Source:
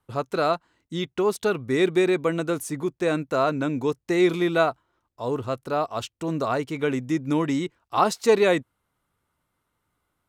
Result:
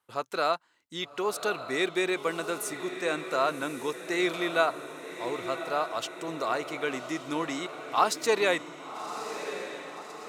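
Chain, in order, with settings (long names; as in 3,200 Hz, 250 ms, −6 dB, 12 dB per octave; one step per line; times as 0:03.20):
high-pass filter 950 Hz 6 dB per octave
feedback delay with all-pass diffusion 1,139 ms, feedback 54%, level −10 dB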